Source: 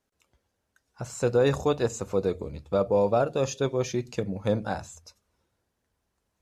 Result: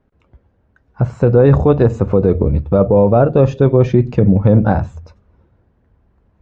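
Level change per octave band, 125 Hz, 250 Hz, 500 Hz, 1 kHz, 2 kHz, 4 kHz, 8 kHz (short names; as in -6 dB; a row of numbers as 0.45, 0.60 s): +20.0 dB, +16.5 dB, +12.0 dB, +10.0 dB, +7.0 dB, n/a, under -10 dB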